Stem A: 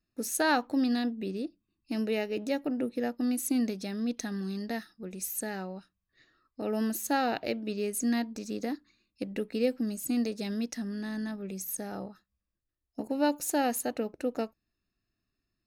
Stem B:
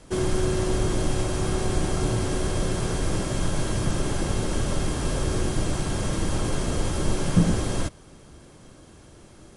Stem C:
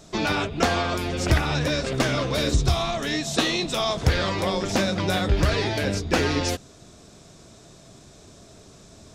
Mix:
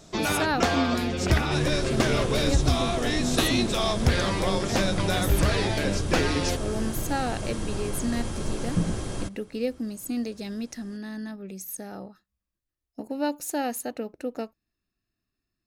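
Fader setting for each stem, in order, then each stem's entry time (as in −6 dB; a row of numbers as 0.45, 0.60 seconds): −0.5, −6.0, −2.0 decibels; 0.00, 1.40, 0.00 seconds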